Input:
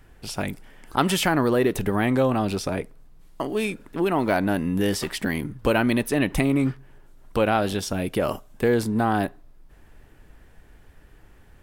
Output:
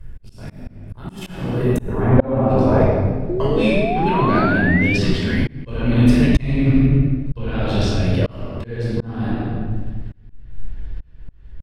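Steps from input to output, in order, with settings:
RIAA equalisation playback
repeating echo 89 ms, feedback 58%, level −17.5 dB
output level in coarse steps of 13 dB
parametric band 14,000 Hz +14.5 dB 1.9 octaves, from 0:01.77 850 Hz, from 0:02.81 4,100 Hz
convolution reverb RT60 1.5 s, pre-delay 16 ms, DRR −5.5 dB
0:03.29–0:04.98: sound drawn into the spectrogram rise 340–2,500 Hz −21 dBFS
volume swells 558 ms
level −1 dB

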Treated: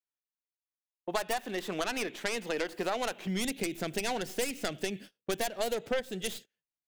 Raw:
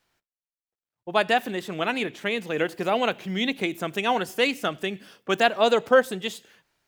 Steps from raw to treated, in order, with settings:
stylus tracing distortion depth 0.35 ms
noise gate −43 dBFS, range −31 dB
parametric band 130 Hz −9.5 dB 0.91 octaves, from 0:03.27 1,100 Hz
downward compressor 6 to 1, threshold −29 dBFS, peak gain reduction 13.5 dB

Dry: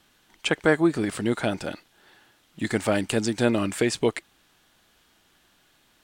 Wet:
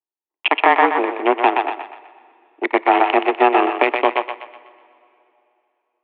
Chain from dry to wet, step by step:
adaptive Wiener filter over 41 samples
de-essing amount 60%
phaser with its sweep stopped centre 1,400 Hz, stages 6
power curve on the samples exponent 2
downward compressor 2.5 to 1, threshold −34 dBFS, peak gain reduction 7.5 dB
on a send at −22.5 dB: convolution reverb RT60 3.0 s, pre-delay 5 ms
on the sum: single-sideband voice off tune +130 Hz 180–2,800 Hz
parametric band 1,000 Hz +5.5 dB 0.84 octaves
feedback echo with a high-pass in the loop 124 ms, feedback 43%, high-pass 430 Hz, level −6 dB
boost into a limiter +27 dB
level −1 dB

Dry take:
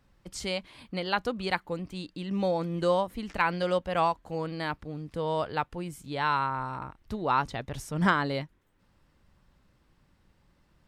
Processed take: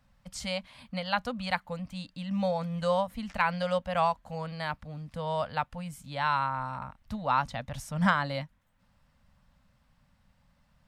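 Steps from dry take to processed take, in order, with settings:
Chebyshev band-stop filter 240–560 Hz, order 2

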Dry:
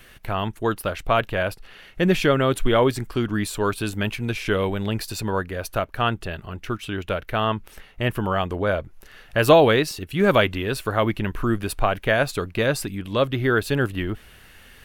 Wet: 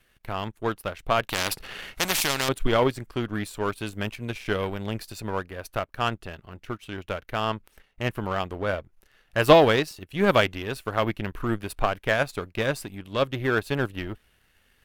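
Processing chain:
power curve on the samples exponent 1.4
0:01.29–0:02.49: every bin compressed towards the loudest bin 4 to 1
level +1 dB

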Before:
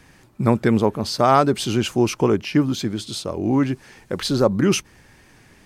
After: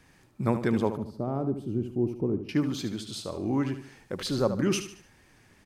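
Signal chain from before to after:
0:00.97–0:02.49: drawn EQ curve 340 Hz 0 dB, 1,700 Hz −24 dB, 6,600 Hz −29 dB, 11,000 Hz −20 dB
on a send: repeating echo 74 ms, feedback 40%, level −10 dB
on the sum: level −8.5 dB

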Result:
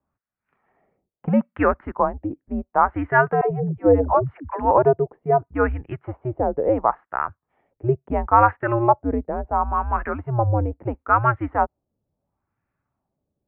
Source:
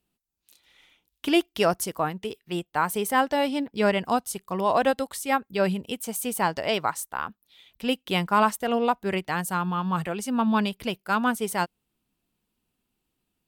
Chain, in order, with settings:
auto-filter low-pass sine 0.73 Hz 600–1,800 Hz
single-sideband voice off tune −120 Hz 160–2,400 Hz
0:03.41–0:04.71: all-pass dispersion lows, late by 106 ms, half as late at 340 Hz
level +2 dB

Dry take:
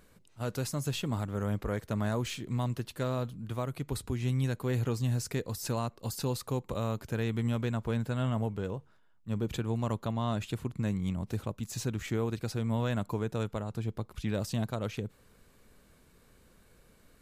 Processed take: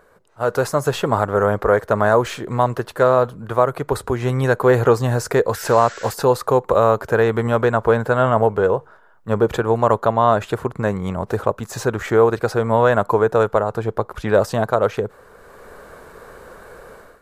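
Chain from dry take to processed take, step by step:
sound drawn into the spectrogram noise, 0:05.53–0:06.14, 1,300–8,000 Hz −49 dBFS
flat-topped bell 820 Hz +14.5 dB 2.5 octaves
automatic gain control gain up to 14 dB
level −1 dB

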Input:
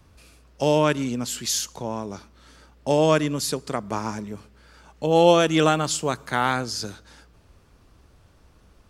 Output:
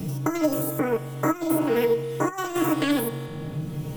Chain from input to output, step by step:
spectrum averaged block by block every 200 ms
bass and treble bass +13 dB, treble +8 dB
spring reverb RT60 3.3 s, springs 48 ms, chirp 30 ms, DRR 12 dB
compressor whose output falls as the input rises −21 dBFS, ratio −0.5
low-shelf EQ 480 Hz +7 dB
stiff-string resonator 68 Hz, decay 0.24 s, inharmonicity 0.002
change of speed 2.24×
multiband upward and downward compressor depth 70%

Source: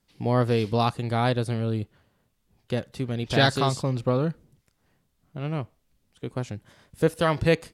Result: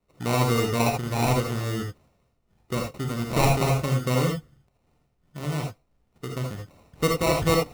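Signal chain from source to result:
decimation without filtering 27×
reverb whose tail is shaped and stops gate 100 ms rising, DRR 0.5 dB
level −2 dB

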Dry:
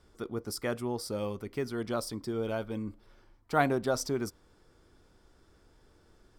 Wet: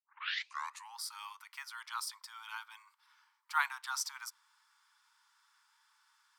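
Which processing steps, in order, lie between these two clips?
turntable start at the beginning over 0.97 s
Butterworth high-pass 880 Hz 96 dB per octave

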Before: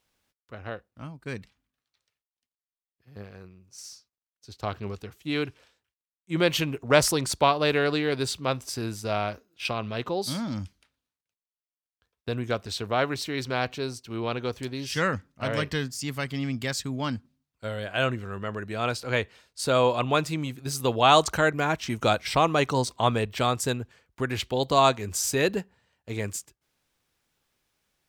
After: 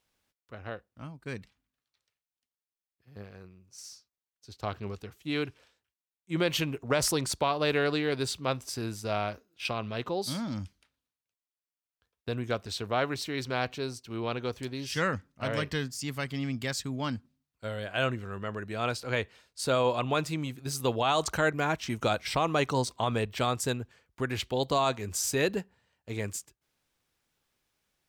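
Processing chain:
brickwall limiter −12.5 dBFS, peak gain reduction 7.5 dB
level −3 dB

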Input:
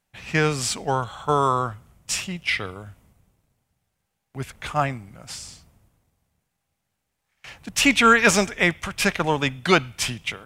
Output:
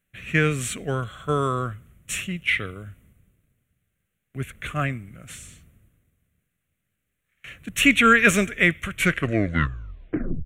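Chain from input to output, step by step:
turntable brake at the end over 1.54 s
phaser with its sweep stopped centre 2,100 Hz, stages 4
level +2 dB

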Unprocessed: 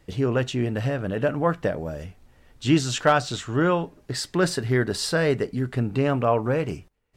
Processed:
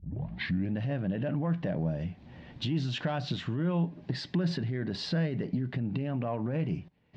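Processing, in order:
turntable start at the beginning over 0.75 s
low-shelf EQ 270 Hz +9.5 dB
brickwall limiter −16 dBFS, peak gain reduction 13 dB
downward compressor 4 to 1, threshold −37 dBFS, peak gain reduction 15.5 dB
soft clipping −27 dBFS, distortion −25 dB
loudspeaker in its box 140–4,200 Hz, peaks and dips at 170 Hz +7 dB, 440 Hz −7 dB, 1,300 Hz −9 dB
level +8 dB

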